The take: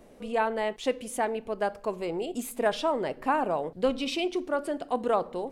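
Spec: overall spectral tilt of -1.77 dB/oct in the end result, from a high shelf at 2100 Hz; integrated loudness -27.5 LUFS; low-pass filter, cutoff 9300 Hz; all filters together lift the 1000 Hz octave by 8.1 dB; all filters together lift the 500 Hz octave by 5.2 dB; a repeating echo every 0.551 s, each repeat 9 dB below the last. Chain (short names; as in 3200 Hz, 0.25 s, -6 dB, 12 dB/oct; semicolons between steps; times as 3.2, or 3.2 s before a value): LPF 9300 Hz; bell 500 Hz +3.5 dB; bell 1000 Hz +8 dB; high shelf 2100 Hz +4.5 dB; feedback echo 0.551 s, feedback 35%, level -9 dB; gain -4 dB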